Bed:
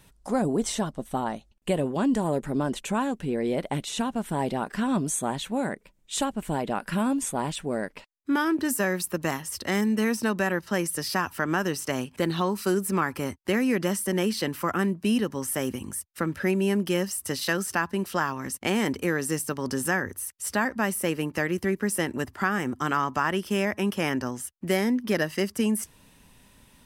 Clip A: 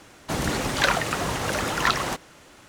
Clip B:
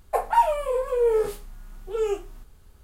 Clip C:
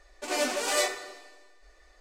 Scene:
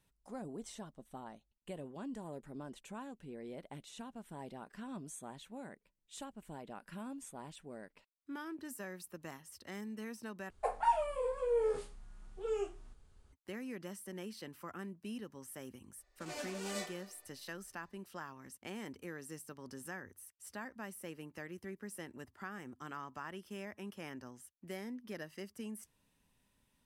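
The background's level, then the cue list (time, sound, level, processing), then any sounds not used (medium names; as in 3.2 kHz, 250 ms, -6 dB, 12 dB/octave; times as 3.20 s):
bed -20 dB
10.50 s: replace with B -11 dB + resampled via 22.05 kHz
15.98 s: add C -16 dB
not used: A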